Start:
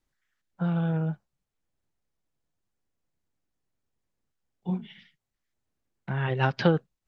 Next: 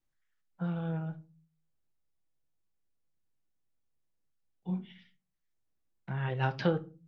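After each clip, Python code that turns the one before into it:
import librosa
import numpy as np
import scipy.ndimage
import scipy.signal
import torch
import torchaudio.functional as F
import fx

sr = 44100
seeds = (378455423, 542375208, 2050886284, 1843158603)

y = fx.room_shoebox(x, sr, seeds[0], volume_m3=150.0, walls='furnished', distance_m=0.59)
y = y * librosa.db_to_amplitude(-7.5)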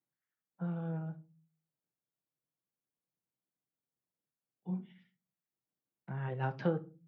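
y = scipy.signal.sosfilt(scipy.signal.butter(4, 120.0, 'highpass', fs=sr, output='sos'), x)
y = fx.peak_eq(y, sr, hz=4300.0, db=-12.0, octaves=2.0)
y = y * librosa.db_to_amplitude(-3.0)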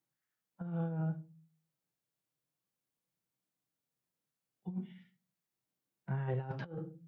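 y = fx.hpss(x, sr, part='harmonic', gain_db=9)
y = fx.over_compress(y, sr, threshold_db=-30.0, ratio=-0.5)
y = y * librosa.db_to_amplitude(-6.0)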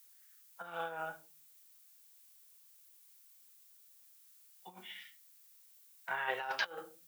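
y = scipy.signal.sosfilt(scipy.signal.butter(2, 730.0, 'highpass', fs=sr, output='sos'), x)
y = fx.tilt_eq(y, sr, slope=4.5)
y = y * librosa.db_to_amplitude(12.0)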